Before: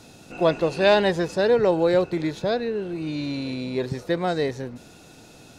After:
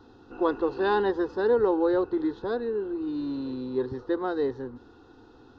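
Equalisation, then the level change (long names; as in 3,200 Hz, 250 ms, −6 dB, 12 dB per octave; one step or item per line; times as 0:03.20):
Gaussian smoothing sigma 2.6 samples
phaser with its sweep stopped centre 620 Hz, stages 6
0.0 dB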